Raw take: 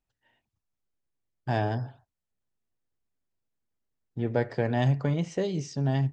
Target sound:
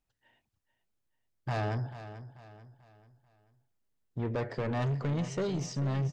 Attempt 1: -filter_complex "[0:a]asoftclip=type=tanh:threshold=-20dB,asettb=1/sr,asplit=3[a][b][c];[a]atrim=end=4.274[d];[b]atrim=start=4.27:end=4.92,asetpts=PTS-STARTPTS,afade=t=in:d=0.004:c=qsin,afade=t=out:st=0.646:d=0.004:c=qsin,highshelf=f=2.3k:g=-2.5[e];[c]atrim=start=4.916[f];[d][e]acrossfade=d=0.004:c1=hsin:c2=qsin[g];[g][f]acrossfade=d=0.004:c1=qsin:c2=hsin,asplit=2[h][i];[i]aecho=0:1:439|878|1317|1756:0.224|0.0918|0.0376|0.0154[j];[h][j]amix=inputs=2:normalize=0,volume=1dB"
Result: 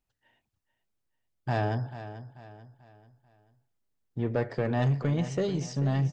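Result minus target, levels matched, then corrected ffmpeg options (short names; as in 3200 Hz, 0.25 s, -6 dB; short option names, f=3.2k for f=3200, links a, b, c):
soft clip: distortion -8 dB
-filter_complex "[0:a]asoftclip=type=tanh:threshold=-28.5dB,asettb=1/sr,asplit=3[a][b][c];[a]atrim=end=4.274[d];[b]atrim=start=4.27:end=4.92,asetpts=PTS-STARTPTS,afade=t=in:d=0.004:c=qsin,afade=t=out:st=0.646:d=0.004:c=qsin,highshelf=f=2.3k:g=-2.5[e];[c]atrim=start=4.916[f];[d][e]acrossfade=d=0.004:c1=hsin:c2=qsin[g];[g][f]acrossfade=d=0.004:c1=qsin:c2=hsin,asplit=2[h][i];[i]aecho=0:1:439|878|1317|1756:0.224|0.0918|0.0376|0.0154[j];[h][j]amix=inputs=2:normalize=0,volume=1dB"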